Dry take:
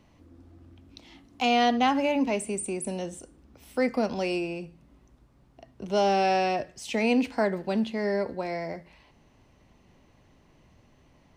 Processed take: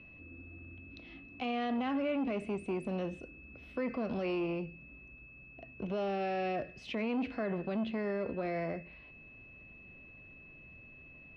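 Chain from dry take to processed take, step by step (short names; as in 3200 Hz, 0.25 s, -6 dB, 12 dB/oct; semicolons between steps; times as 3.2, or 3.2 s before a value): bell 890 Hz -14.5 dB 0.29 oct; limiter -25.5 dBFS, peak gain reduction 10.5 dB; whine 2600 Hz -49 dBFS; air absorption 330 m; core saturation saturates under 340 Hz; gain +1 dB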